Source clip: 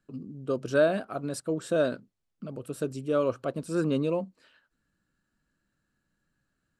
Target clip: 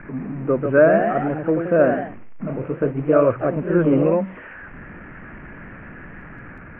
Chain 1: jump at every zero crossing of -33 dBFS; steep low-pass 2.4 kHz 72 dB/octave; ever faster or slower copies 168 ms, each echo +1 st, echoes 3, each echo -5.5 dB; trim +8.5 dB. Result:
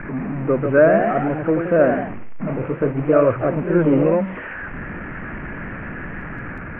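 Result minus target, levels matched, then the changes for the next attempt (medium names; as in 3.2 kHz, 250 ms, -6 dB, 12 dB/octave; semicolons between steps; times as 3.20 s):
jump at every zero crossing: distortion +7 dB
change: jump at every zero crossing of -41 dBFS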